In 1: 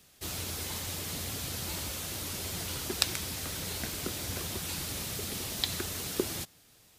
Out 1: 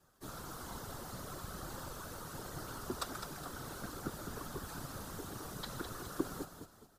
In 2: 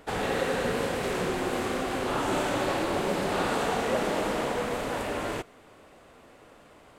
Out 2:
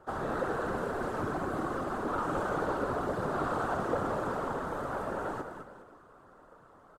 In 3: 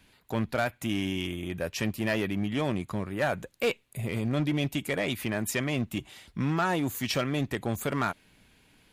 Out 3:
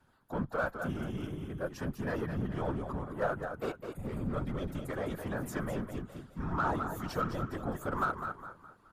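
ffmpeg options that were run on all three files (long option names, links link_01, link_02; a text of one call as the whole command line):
ffmpeg -i in.wav -filter_complex "[0:a]highshelf=frequency=1800:width_type=q:width=3:gain=-8.5,aecho=1:1:5.2:0.47,asplit=2[link_01][link_02];[link_02]aecho=0:1:208|416|624|832:0.398|0.151|0.0575|0.0218[link_03];[link_01][link_03]amix=inputs=2:normalize=0,afftfilt=real='hypot(re,im)*cos(2*PI*random(0))':imag='hypot(re,im)*sin(2*PI*random(1))':win_size=512:overlap=0.75,afreqshift=-41,asplit=2[link_04][link_05];[link_05]asoftclip=type=tanh:threshold=-29.5dB,volume=-7dB[link_06];[link_04][link_06]amix=inputs=2:normalize=0,volume=-3.5dB" out.wav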